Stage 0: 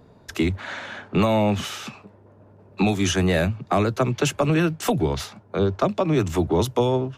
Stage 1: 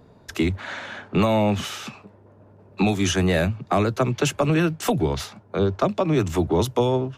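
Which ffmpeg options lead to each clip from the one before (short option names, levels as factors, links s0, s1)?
-af anull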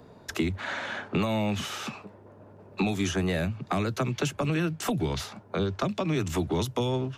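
-filter_complex "[0:a]lowshelf=f=150:g=-6.5,acrossover=split=250|1500[s0][s1][s2];[s0]acompressor=threshold=0.0316:ratio=4[s3];[s1]acompressor=threshold=0.0178:ratio=4[s4];[s2]acompressor=threshold=0.0126:ratio=4[s5];[s3][s4][s5]amix=inputs=3:normalize=0,volume=1.33"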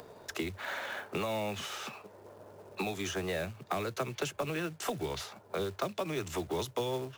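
-af "lowshelf=f=330:t=q:w=1.5:g=-6.5,acrusher=bits=4:mode=log:mix=0:aa=0.000001,acompressor=mode=upward:threshold=0.0112:ratio=2.5,volume=0.562"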